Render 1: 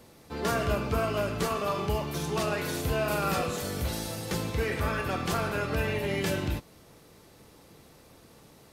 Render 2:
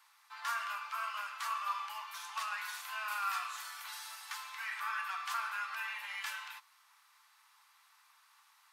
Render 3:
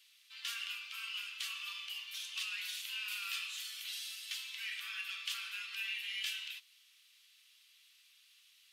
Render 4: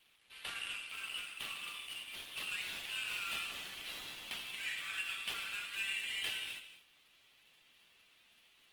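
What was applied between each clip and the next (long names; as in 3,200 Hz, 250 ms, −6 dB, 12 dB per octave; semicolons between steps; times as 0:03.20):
Butterworth high-pass 970 Hz 48 dB per octave; high-shelf EQ 2,100 Hz −9.5 dB
four-pole ladder high-pass 2,600 Hz, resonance 55%; level +10.5 dB
running median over 9 samples; reverb whose tail is shaped and stops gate 260 ms flat, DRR 8 dB; level +3.5 dB; Opus 20 kbit/s 48,000 Hz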